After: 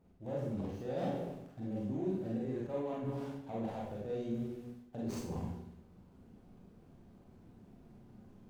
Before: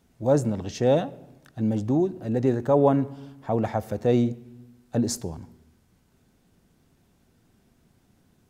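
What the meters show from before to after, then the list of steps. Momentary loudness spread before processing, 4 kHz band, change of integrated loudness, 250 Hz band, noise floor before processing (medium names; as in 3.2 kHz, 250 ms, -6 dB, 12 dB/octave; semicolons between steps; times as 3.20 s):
15 LU, -16.0 dB, -15.0 dB, -13.0 dB, -65 dBFS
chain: median filter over 25 samples; reverse; compression 16:1, threshold -35 dBFS, peak gain reduction 21 dB; reverse; peak limiter -35 dBFS, peak gain reduction 9 dB; Schroeder reverb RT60 0.59 s, combs from 31 ms, DRR -4.5 dB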